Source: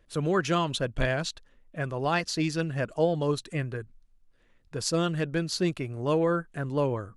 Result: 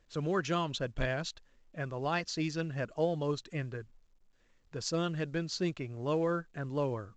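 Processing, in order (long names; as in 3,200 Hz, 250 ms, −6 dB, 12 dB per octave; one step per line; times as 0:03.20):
level −6 dB
mu-law 128 kbit/s 16,000 Hz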